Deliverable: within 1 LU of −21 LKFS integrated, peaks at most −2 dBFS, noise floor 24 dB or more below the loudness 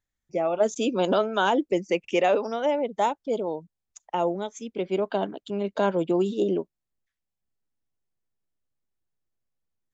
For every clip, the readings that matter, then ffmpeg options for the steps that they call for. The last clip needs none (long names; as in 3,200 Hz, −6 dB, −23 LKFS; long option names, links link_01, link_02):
integrated loudness −26.0 LKFS; sample peak −10.0 dBFS; target loudness −21.0 LKFS
→ -af "volume=5dB"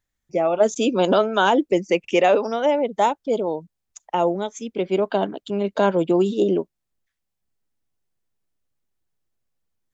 integrated loudness −21.0 LKFS; sample peak −5.0 dBFS; background noise floor −80 dBFS